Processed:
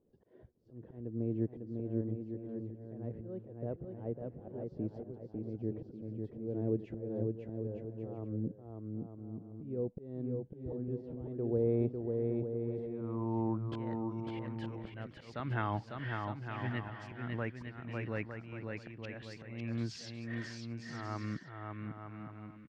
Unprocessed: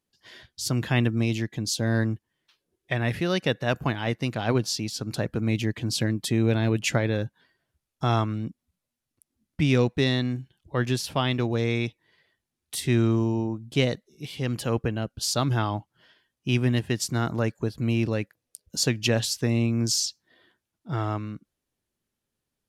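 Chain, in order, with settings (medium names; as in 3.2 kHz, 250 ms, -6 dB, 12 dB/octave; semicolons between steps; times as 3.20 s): compression 3:1, threshold -40 dBFS, peak gain reduction 16.5 dB; slow attack 755 ms; low-pass sweep 460 Hz -> 2 kHz, 11.49–14.55 s; bouncing-ball echo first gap 550 ms, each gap 0.65×, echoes 5; trim +8.5 dB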